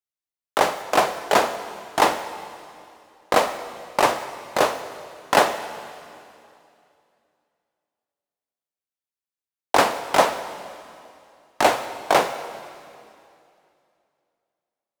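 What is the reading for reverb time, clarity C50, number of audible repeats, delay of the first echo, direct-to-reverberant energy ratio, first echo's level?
2.6 s, 11.0 dB, none, none, 10.0 dB, none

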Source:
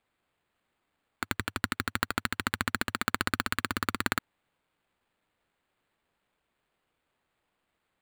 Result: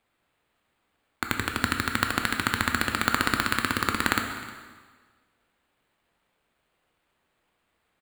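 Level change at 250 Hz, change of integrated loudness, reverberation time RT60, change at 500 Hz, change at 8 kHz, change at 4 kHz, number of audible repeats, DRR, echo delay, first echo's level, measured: +5.5 dB, +5.5 dB, 1.5 s, +5.5 dB, +5.5 dB, +5.5 dB, 1, 4.0 dB, 0.309 s, -20.5 dB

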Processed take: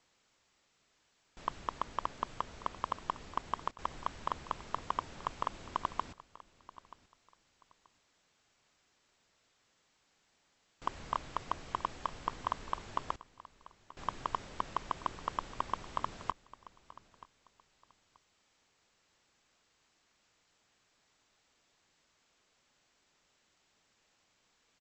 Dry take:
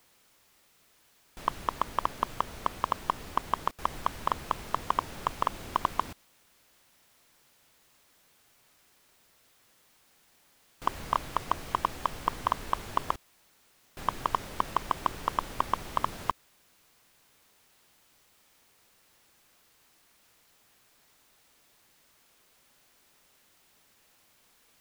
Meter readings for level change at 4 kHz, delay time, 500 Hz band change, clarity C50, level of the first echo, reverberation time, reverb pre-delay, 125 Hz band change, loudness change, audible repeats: -7.0 dB, 0.931 s, -7.0 dB, none, -18.5 dB, none, none, -7.0 dB, -7.0 dB, 2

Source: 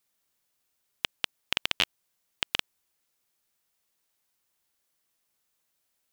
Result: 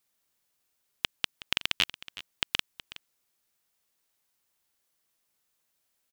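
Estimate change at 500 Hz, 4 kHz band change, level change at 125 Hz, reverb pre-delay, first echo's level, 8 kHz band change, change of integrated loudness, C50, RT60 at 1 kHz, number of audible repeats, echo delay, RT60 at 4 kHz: -3.5 dB, 0.0 dB, +1.0 dB, none, -16.5 dB, 0.0 dB, 0.0 dB, none, none, 1, 0.37 s, none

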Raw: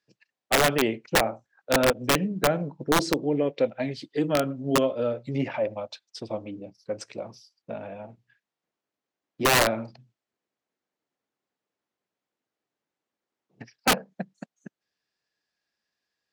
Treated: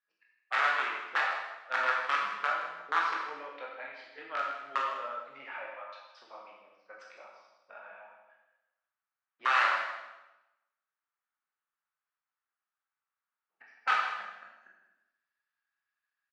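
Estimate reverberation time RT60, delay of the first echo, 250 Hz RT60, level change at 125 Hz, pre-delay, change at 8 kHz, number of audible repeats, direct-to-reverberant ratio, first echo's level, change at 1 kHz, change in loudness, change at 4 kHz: 1.0 s, 0.158 s, 0.95 s, under -40 dB, 7 ms, under -20 dB, 1, -3.0 dB, -10.5 dB, -1.5 dB, -6.0 dB, -11.5 dB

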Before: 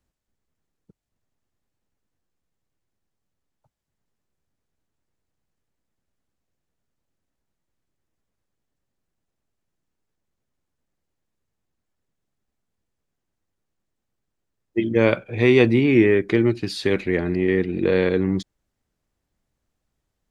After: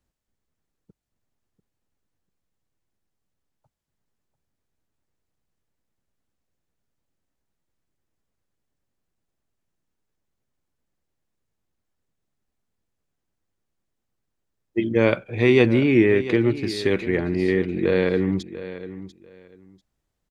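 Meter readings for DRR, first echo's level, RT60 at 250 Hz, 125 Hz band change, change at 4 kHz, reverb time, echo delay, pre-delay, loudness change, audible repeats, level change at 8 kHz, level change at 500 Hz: none, -14.0 dB, none, -1.0 dB, -1.0 dB, none, 0.693 s, none, -1.0 dB, 2, n/a, -1.0 dB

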